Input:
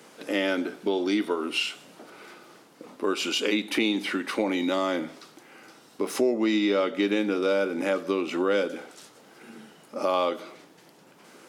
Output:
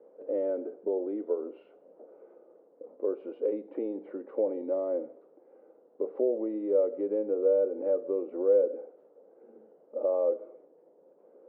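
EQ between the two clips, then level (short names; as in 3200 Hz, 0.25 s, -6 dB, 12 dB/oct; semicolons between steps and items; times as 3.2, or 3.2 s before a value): HPF 380 Hz 12 dB/oct; synth low-pass 510 Hz, resonance Q 4.9; air absorption 290 m; -8.0 dB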